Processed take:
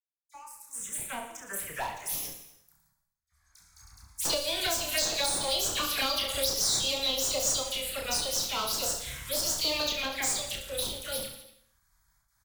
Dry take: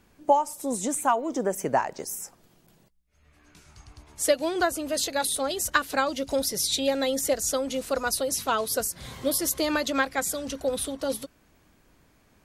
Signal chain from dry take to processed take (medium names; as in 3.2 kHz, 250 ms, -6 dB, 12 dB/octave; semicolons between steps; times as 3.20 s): fade-in on the opening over 2.44 s; gate with hold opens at -51 dBFS; amplifier tone stack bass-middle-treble 10-0-10; waveshaping leveller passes 2; peak limiter -17.5 dBFS, peak gain reduction 5.5 dB; one-sided clip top -31 dBFS, bottom -20.5 dBFS; phase dispersion lows, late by 53 ms, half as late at 2 kHz; touch-sensitive phaser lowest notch 470 Hz, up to 4.6 kHz, full sweep at -22 dBFS; reverse bouncing-ball echo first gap 30 ms, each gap 1.25×, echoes 5; gated-style reverb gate 360 ms falling, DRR 9.5 dB; 4.25–6.54 s: three bands compressed up and down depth 100%; trim +1.5 dB